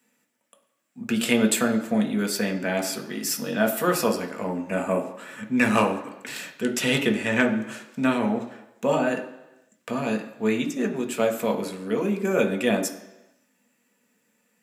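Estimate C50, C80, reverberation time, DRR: 11.0 dB, 13.5 dB, 0.95 s, 3.5 dB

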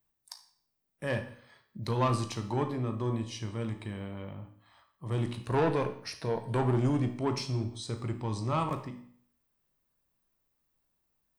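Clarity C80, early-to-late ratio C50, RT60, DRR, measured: 14.0 dB, 10.0 dB, 0.60 s, 6.5 dB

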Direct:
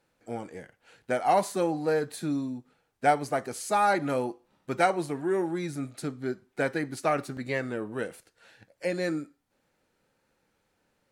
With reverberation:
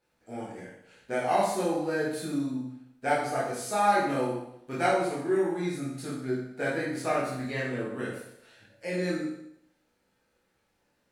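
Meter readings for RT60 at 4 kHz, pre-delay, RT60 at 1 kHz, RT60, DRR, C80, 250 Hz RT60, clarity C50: 0.75 s, 16 ms, 0.70 s, 0.75 s, −7.5 dB, 5.5 dB, 0.75 s, 2.5 dB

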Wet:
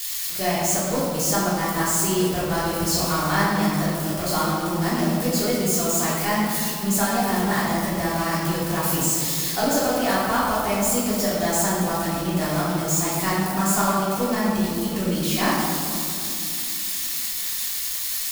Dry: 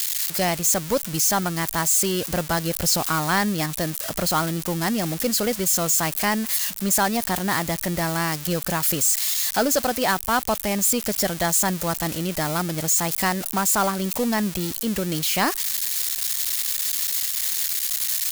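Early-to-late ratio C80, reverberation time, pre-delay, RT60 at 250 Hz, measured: 0.5 dB, 2.7 s, 3 ms, 3.8 s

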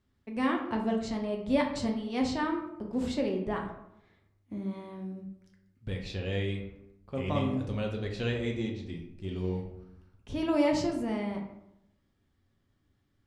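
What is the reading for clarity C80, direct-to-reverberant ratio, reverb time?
9.0 dB, 0.5 dB, 0.85 s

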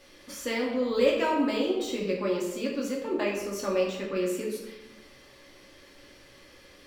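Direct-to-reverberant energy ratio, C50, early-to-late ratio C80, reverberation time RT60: −4.0 dB, 3.5 dB, 5.5 dB, 1.0 s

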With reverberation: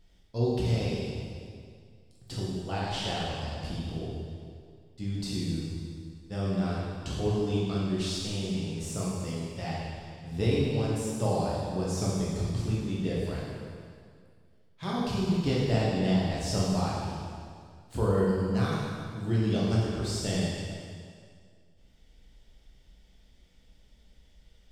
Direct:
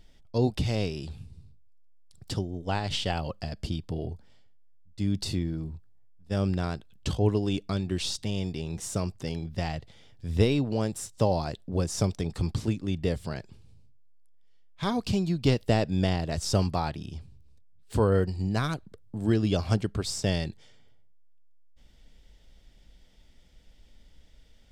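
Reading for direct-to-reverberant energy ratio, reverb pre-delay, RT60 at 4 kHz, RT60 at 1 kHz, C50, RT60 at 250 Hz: −6.5 dB, 5 ms, 1.9 s, 2.1 s, −1.5 dB, 2.1 s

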